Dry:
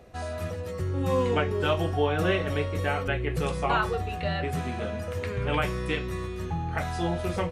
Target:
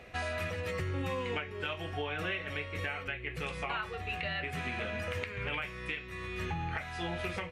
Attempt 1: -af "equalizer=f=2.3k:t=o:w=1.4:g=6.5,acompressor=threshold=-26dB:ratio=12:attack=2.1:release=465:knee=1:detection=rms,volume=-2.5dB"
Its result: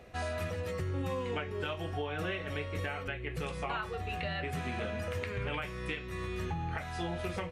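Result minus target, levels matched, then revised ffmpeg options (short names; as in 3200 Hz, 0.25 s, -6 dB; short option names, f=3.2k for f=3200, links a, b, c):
2000 Hz band -3.0 dB
-af "equalizer=f=2.3k:t=o:w=1.4:g=15,acompressor=threshold=-26dB:ratio=12:attack=2.1:release=465:knee=1:detection=rms,volume=-2.5dB"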